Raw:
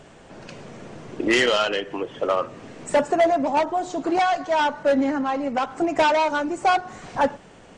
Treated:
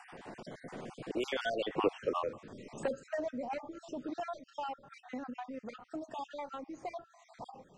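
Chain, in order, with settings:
time-frequency cells dropped at random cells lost 45%
source passing by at 0:01.89, 27 m/s, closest 1.8 metres
multiband upward and downward compressor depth 70%
level +9.5 dB

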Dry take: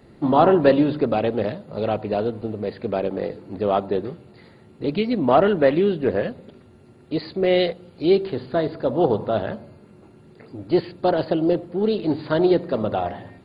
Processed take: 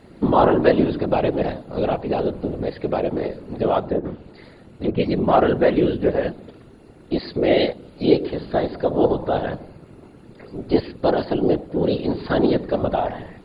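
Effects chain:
0:03.79–0:05.00: treble cut that deepens with the level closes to 1,400 Hz, closed at −20 dBFS
in parallel at −2.5 dB: downward compressor, threshold −27 dBFS, peak gain reduction 16 dB
on the sum: random phases in short frames
level −1 dB

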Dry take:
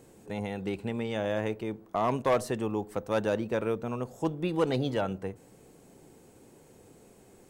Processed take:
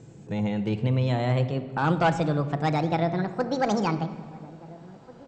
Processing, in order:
gliding playback speed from 94% → 190%
elliptic low-pass filter 7,600 Hz, stop band 40 dB
parametric band 130 Hz +13.5 dB 1.3 octaves
slap from a distant wall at 290 metres, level −20 dB
rectangular room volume 2,700 cubic metres, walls mixed, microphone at 0.71 metres
level +2 dB

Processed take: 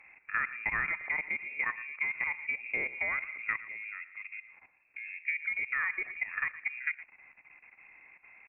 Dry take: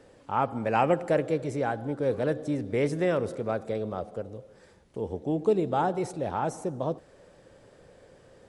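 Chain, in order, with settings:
voice inversion scrambler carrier 2,600 Hz
output level in coarse steps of 14 dB
on a send: single-tap delay 115 ms −17 dB
on the sum: treble cut that deepens with the level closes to 1,900 Hz, closed at −27 dBFS

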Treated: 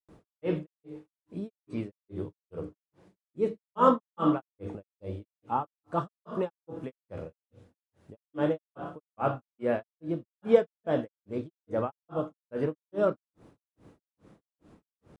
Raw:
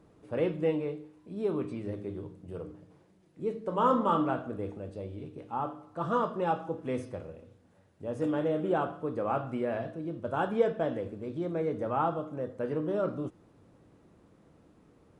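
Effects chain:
granular cloud 254 ms, grains 2.4 per second, pitch spread up and down by 0 semitones
level +6 dB

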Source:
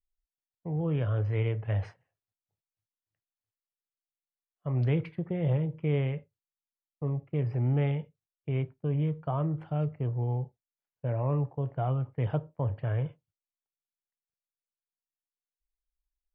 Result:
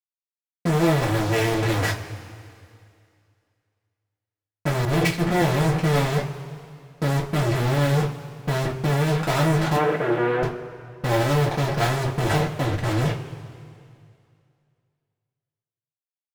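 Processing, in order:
0:12.46–0:13.01: output level in coarse steps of 19 dB
fuzz pedal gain 54 dB, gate −52 dBFS
0:09.76–0:10.43: loudspeaker in its box 240–2,900 Hz, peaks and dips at 320 Hz +9 dB, 500 Hz +8 dB, 1,500 Hz +7 dB
coupled-rooms reverb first 0.2 s, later 2.4 s, from −20 dB, DRR −3.5 dB
0:04.85–0:05.42: multiband upward and downward expander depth 100%
level −9 dB

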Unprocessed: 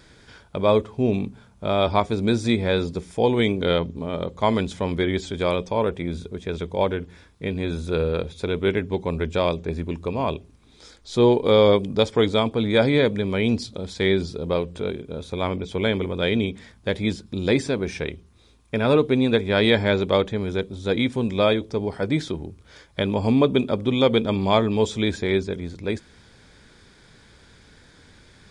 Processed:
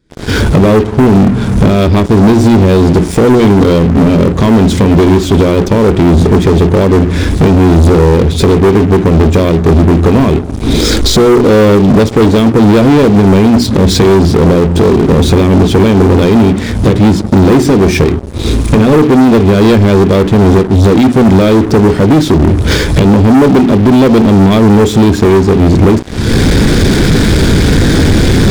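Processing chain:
camcorder AGC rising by 67 dB per second
low shelf with overshoot 490 Hz +10.5 dB, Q 1.5
mains-hum notches 60/120/180/240/300/360/420 Hz
leveller curve on the samples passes 5
in parallel at −3 dB: soft clipping −2 dBFS, distortion −12 dB
on the sum: level −12 dB

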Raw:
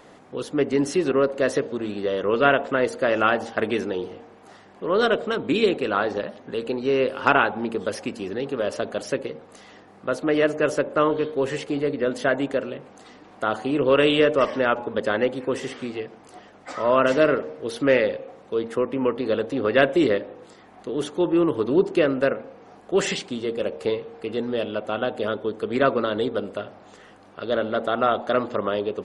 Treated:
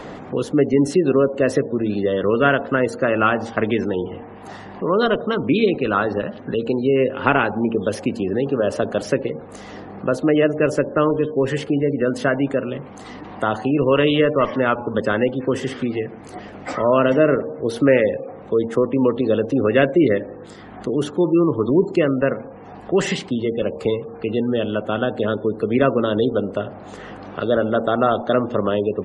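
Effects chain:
gate on every frequency bin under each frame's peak −30 dB strong
low-shelf EQ 190 Hz +9 dB
phase shifter 0.11 Hz, delay 1.1 ms, feedback 21%
multiband upward and downward compressor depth 40%
level +2 dB

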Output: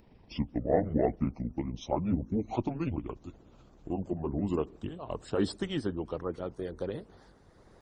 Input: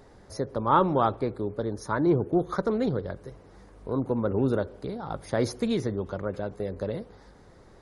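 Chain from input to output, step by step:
pitch glide at a constant tempo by −12 semitones ending unshifted
harmonic and percussive parts rebalanced harmonic −10 dB

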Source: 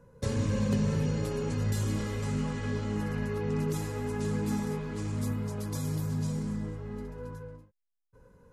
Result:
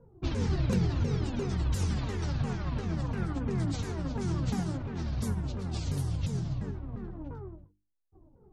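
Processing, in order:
pitch shifter swept by a sawtooth −11 semitones, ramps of 348 ms
low-pass that shuts in the quiet parts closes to 680 Hz, open at −27.5 dBFS
mains-hum notches 50/100/150/200/250/300/350 Hz
level +1.5 dB

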